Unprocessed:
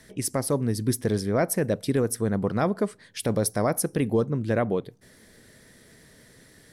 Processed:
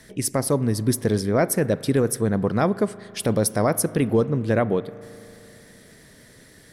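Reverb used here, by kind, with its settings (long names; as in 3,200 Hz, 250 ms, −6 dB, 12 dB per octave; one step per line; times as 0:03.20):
spring reverb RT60 2.9 s, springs 37 ms, chirp 35 ms, DRR 16.5 dB
level +3.5 dB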